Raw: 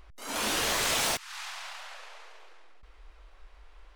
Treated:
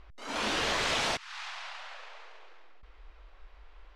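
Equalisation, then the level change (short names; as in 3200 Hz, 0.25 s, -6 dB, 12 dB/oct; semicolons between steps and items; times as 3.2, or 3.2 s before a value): LPF 4600 Hz 12 dB/oct; 0.0 dB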